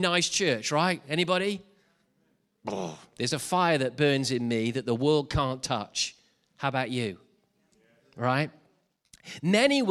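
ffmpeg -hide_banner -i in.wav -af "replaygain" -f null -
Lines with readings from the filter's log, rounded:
track_gain = +6.7 dB
track_peak = 0.236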